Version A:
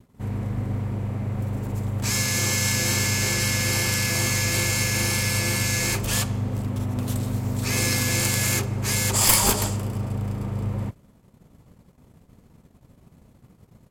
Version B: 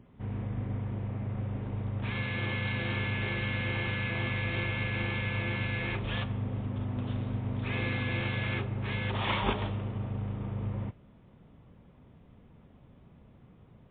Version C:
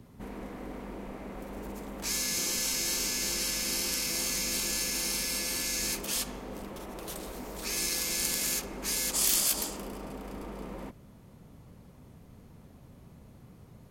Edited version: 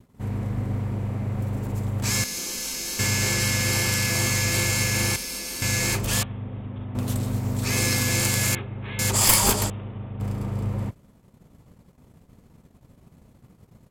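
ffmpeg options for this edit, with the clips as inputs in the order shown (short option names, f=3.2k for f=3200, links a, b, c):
-filter_complex "[2:a]asplit=2[a][b];[1:a]asplit=3[c][d][e];[0:a]asplit=6[f][g][h][i][j][k];[f]atrim=end=2.242[l];[a]atrim=start=2.238:end=2.992[m];[g]atrim=start=2.988:end=5.162[n];[b]atrim=start=5.158:end=5.622[o];[h]atrim=start=5.618:end=6.232[p];[c]atrim=start=6.228:end=6.952[q];[i]atrim=start=6.948:end=8.552[r];[d]atrim=start=8.548:end=8.992[s];[j]atrim=start=8.988:end=9.702[t];[e]atrim=start=9.698:end=10.202[u];[k]atrim=start=10.198[v];[l][m]acrossfade=d=0.004:c1=hsin:c2=hsin[w];[w][n]acrossfade=d=0.004:c1=hsin:c2=hsin[x];[x][o]acrossfade=d=0.004:c1=hsin:c2=hsin[y];[y][p]acrossfade=d=0.004:c1=hsin:c2=hsin[z];[z][q]acrossfade=d=0.004:c1=hsin:c2=hsin[aa];[aa][r]acrossfade=d=0.004:c1=hsin:c2=hsin[ab];[ab][s]acrossfade=d=0.004:c1=hsin:c2=hsin[ac];[ac][t]acrossfade=d=0.004:c1=hsin:c2=hsin[ad];[ad][u]acrossfade=d=0.004:c1=hsin:c2=hsin[ae];[ae][v]acrossfade=d=0.004:c1=hsin:c2=hsin"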